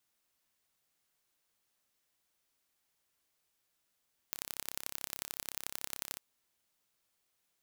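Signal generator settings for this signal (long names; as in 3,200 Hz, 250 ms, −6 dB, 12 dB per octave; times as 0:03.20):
impulse train 33.7 per second, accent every 3, −9 dBFS 1.86 s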